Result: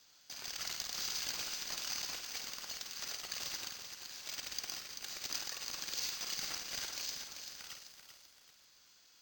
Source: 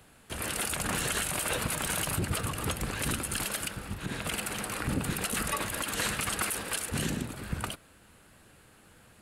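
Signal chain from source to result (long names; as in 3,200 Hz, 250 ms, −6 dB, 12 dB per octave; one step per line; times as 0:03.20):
in parallel at −2 dB: downward compressor, threshold −48 dBFS, peak gain reduction 20.5 dB
on the sum: brickwall limiter −21 dBFS, peak gain reduction 5.5 dB
resonant band-pass 6,100 Hz, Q 11
decimation without filtering 4×
flutter between parallel walls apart 8.7 metres, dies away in 0.4 s
feedback echo at a low word length 387 ms, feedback 55%, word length 11 bits, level −7 dB
level +9.5 dB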